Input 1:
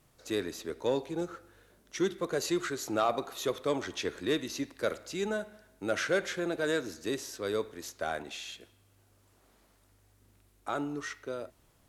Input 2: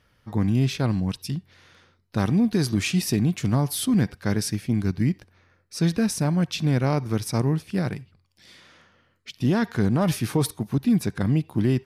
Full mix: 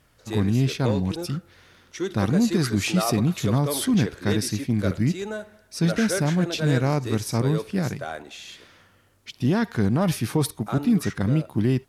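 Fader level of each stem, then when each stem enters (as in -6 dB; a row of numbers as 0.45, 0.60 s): +1.0, 0.0 dB; 0.00, 0.00 s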